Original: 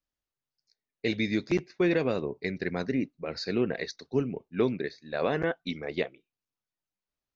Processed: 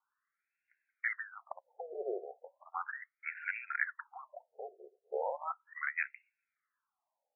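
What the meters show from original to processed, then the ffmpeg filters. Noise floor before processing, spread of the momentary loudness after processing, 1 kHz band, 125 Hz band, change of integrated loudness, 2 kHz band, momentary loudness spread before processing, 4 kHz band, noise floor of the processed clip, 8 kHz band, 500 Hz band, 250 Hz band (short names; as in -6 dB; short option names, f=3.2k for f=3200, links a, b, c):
under -85 dBFS, 15 LU, -2.0 dB, under -40 dB, -9.0 dB, -1.5 dB, 8 LU, under -40 dB, under -85 dBFS, n/a, -13.5 dB, -29.0 dB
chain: -af "acompressor=threshold=-39dB:ratio=4,afreqshift=-210,afftfilt=real='re*between(b*sr/1024,520*pow(2000/520,0.5+0.5*sin(2*PI*0.36*pts/sr))/1.41,520*pow(2000/520,0.5+0.5*sin(2*PI*0.36*pts/sr))*1.41)':imag='im*between(b*sr/1024,520*pow(2000/520,0.5+0.5*sin(2*PI*0.36*pts/sr))/1.41,520*pow(2000/520,0.5+0.5*sin(2*PI*0.36*pts/sr))*1.41)':win_size=1024:overlap=0.75,volume=15dB"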